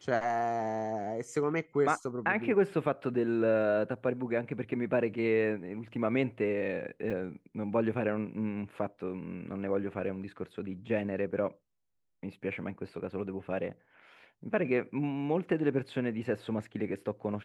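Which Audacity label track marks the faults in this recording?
7.100000	7.110000	gap 5.3 ms

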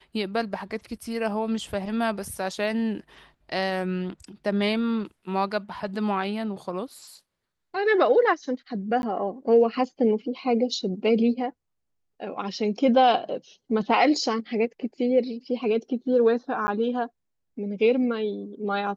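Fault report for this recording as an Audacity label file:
9.020000	9.030000	gap 11 ms
16.670000	16.680000	gap 10 ms

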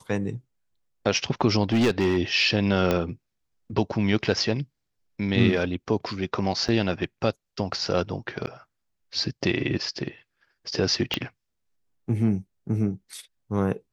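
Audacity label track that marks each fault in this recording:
1.630000	2.170000	clipped -17 dBFS
2.910000	2.910000	pop -9 dBFS
6.680000	6.690000	gap 7.1 ms
8.460000	8.470000	gap 9.5 ms
11.140000	11.140000	pop -10 dBFS

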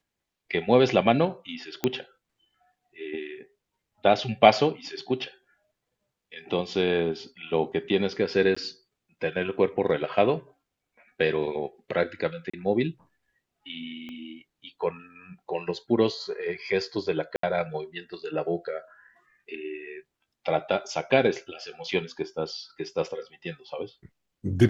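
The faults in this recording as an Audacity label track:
1.840000	1.840000	pop -10 dBFS
8.550000	8.560000	gap 15 ms
12.500000	12.540000	gap 35 ms
14.090000	14.090000	pop -28 dBFS
17.360000	17.430000	gap 73 ms

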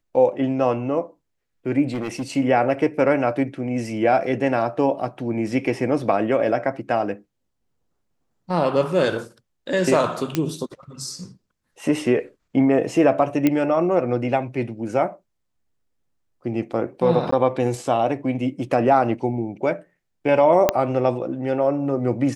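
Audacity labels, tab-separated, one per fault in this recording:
1.930000	2.300000	clipped -22.5 dBFS
10.350000	10.350000	pop -7 dBFS
13.470000	13.470000	pop -6 dBFS
17.310000	17.320000	gap 14 ms
20.690000	20.690000	pop -2 dBFS

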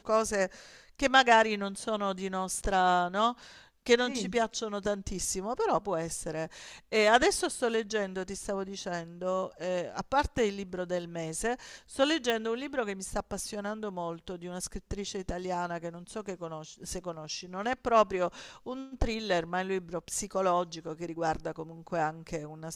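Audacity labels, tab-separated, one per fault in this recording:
12.300000	12.300000	pop -15 dBFS

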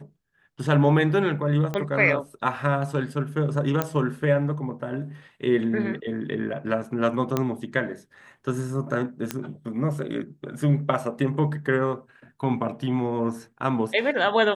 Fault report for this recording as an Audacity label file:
1.740000	1.740000	pop -15 dBFS
3.820000	3.820000	pop -9 dBFS
7.370000	7.370000	pop -10 dBFS
9.310000	9.310000	pop -11 dBFS

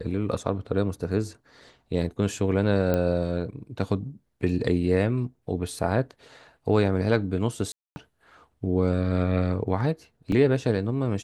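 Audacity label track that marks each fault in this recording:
2.940000	2.940000	pop -13 dBFS
7.720000	7.960000	gap 0.24 s
10.320000	10.320000	gap 2.6 ms

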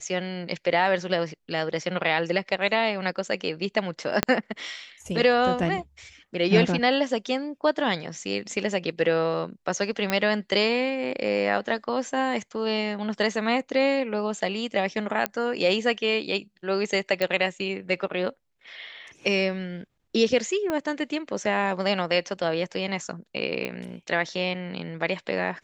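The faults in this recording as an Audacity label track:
4.230000	4.230000	pop -4 dBFS
10.100000	10.100000	pop -9 dBFS
15.260000	15.260000	pop -8 dBFS
17.220000	17.220000	pop -12 dBFS
20.700000	20.700000	pop -14 dBFS
23.650000	23.650000	pop -17 dBFS

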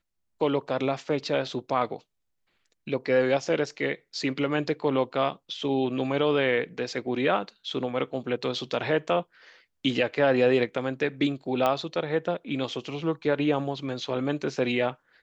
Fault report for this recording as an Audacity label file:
11.660000	11.660000	pop -12 dBFS

